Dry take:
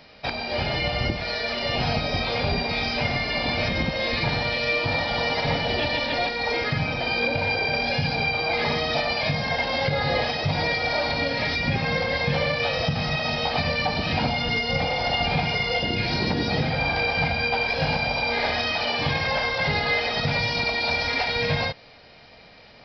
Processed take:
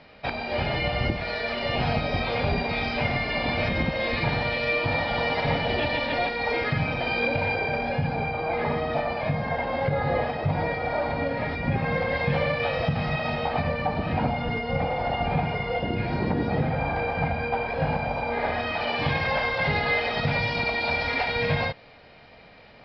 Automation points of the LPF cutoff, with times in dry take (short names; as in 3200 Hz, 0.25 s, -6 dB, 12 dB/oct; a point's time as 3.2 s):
7.35 s 2900 Hz
8 s 1500 Hz
11.64 s 1500 Hz
12.19 s 2300 Hz
13.26 s 2300 Hz
13.75 s 1500 Hz
18.36 s 1500 Hz
19.07 s 3000 Hz